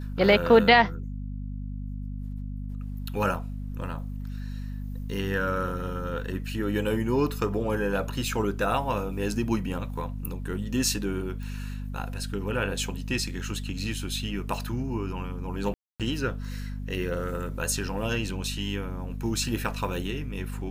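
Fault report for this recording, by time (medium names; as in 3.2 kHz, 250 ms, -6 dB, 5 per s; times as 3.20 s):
hum 50 Hz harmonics 5 -34 dBFS
11.43 s: pop
15.74–16.00 s: dropout 257 ms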